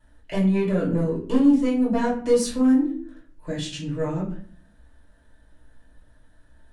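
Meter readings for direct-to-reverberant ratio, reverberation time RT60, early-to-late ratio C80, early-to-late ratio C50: -6.5 dB, 0.50 s, 12.0 dB, 7.5 dB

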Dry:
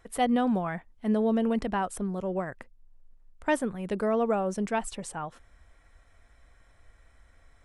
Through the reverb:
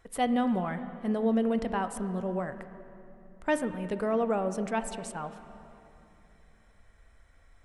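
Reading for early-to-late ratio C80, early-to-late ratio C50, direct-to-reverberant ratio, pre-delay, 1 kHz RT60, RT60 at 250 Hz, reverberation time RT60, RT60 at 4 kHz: 11.0 dB, 10.5 dB, 9.5 dB, 4 ms, 2.7 s, 3.3 s, 2.9 s, 2.3 s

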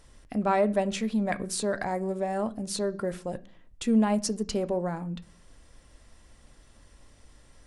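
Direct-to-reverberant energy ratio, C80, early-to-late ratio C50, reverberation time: 11.0 dB, 25.0 dB, 21.0 dB, 0.40 s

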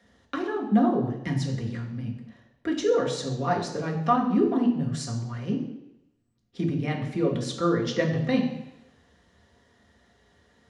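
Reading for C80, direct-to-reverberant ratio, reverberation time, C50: 9.5 dB, -1.0 dB, 0.85 s, 7.0 dB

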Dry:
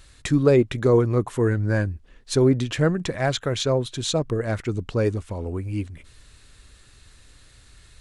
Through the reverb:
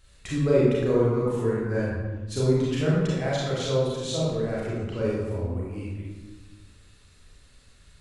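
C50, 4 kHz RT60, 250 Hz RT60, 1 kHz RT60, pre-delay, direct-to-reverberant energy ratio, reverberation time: -2.5 dB, 0.80 s, 1.7 s, 1.2 s, 30 ms, -7.0 dB, 1.3 s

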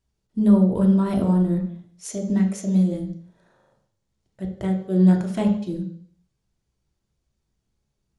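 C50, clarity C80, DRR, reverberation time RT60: 8.0 dB, 11.0 dB, 2.0 dB, 0.60 s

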